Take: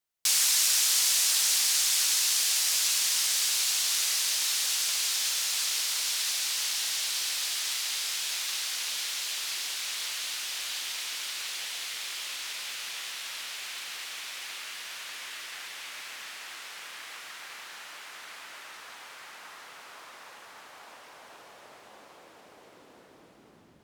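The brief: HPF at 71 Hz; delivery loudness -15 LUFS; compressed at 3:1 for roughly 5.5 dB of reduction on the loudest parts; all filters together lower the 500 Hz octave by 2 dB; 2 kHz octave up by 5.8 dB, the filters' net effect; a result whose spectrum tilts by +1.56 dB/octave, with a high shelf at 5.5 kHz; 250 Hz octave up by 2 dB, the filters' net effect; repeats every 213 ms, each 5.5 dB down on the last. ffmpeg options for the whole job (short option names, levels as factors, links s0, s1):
-af "highpass=71,equalizer=f=250:t=o:g=4,equalizer=f=500:t=o:g=-4,equalizer=f=2000:t=o:g=8.5,highshelf=f=5500:g=-7.5,acompressor=threshold=0.0282:ratio=3,aecho=1:1:213|426|639|852|1065|1278|1491:0.531|0.281|0.149|0.079|0.0419|0.0222|0.0118,volume=6.31"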